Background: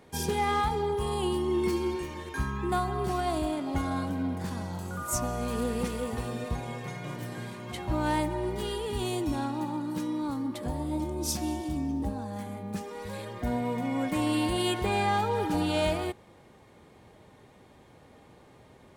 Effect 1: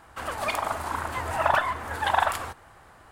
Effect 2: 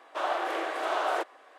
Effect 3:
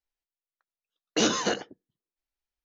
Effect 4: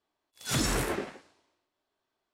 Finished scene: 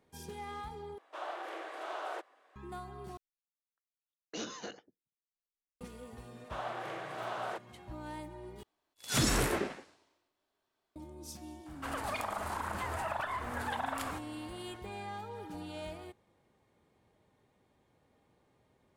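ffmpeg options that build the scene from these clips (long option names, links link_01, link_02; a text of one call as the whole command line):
ffmpeg -i bed.wav -i cue0.wav -i cue1.wav -i cue2.wav -i cue3.wav -filter_complex "[2:a]asplit=2[link_01][link_02];[0:a]volume=-16dB[link_03];[1:a]acompressor=threshold=-27dB:ratio=6:attack=3.2:release=140:knee=1:detection=peak[link_04];[link_03]asplit=4[link_05][link_06][link_07][link_08];[link_05]atrim=end=0.984[link_09];[link_01]atrim=end=1.58,asetpts=PTS-STARTPTS,volume=-11.5dB[link_10];[link_06]atrim=start=2.556:end=3.174[link_11];[3:a]atrim=end=2.64,asetpts=PTS-STARTPTS,volume=-17dB[link_12];[link_07]atrim=start=5.806:end=8.634[link_13];[4:a]atrim=end=2.33,asetpts=PTS-STARTPTS,volume=-0.5dB[link_14];[link_08]atrim=start=10.956[link_15];[link_02]atrim=end=1.58,asetpts=PTS-STARTPTS,volume=-10dB,afade=type=in:duration=0.004:curve=hsin,afade=type=out:start_time=1.576:duration=0.004:curve=hsin,adelay=6350[link_16];[link_04]atrim=end=3.11,asetpts=PTS-STARTPTS,volume=-5dB,afade=type=in:duration=0.004:curve=hsin,afade=type=out:start_time=3.106:duration=0.004:curve=hsin,adelay=11660[link_17];[link_09][link_10]acrossfade=duration=0.004:curve1=hsin:curve2=hsin[link_18];[link_18][link_11]acrossfade=duration=0.004:curve1=hsin:curve2=hsin[link_19];[link_19][link_12]acrossfade=duration=0.004:curve1=hsin:curve2=hsin[link_20];[link_20][link_13]acrossfade=duration=0.004:curve1=hsin:curve2=hsin[link_21];[link_21][link_14]acrossfade=duration=0.004:curve1=hsin:curve2=hsin[link_22];[link_22][link_15]acrossfade=duration=0.004:curve1=hsin:curve2=hsin[link_23];[link_23][link_16][link_17]amix=inputs=3:normalize=0" out.wav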